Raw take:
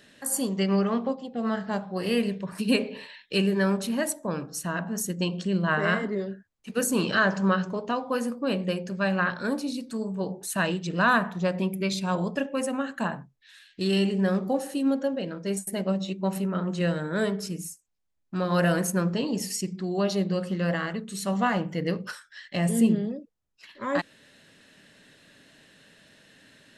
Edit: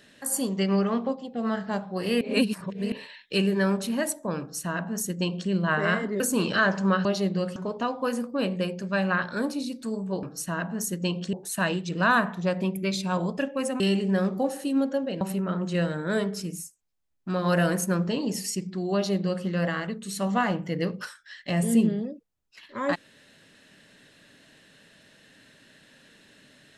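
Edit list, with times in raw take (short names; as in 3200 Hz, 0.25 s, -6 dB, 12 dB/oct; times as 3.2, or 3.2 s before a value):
2.21–2.92 reverse
4.4–5.5 copy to 10.31
6.2–6.79 cut
12.78–13.9 cut
15.31–16.27 cut
20–20.51 copy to 7.64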